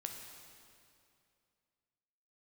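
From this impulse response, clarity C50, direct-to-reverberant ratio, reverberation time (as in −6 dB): 4.0 dB, 2.5 dB, 2.5 s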